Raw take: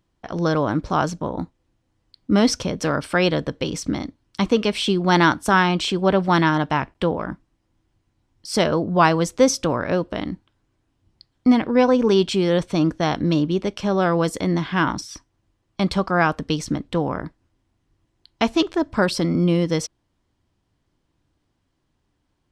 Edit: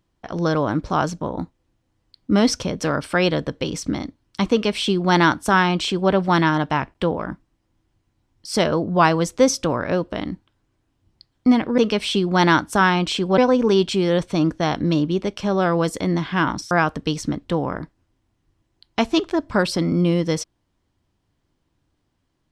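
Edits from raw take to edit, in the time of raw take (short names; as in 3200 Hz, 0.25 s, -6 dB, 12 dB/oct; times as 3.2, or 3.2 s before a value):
4.51–6.11 copy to 11.78
15.11–16.14 cut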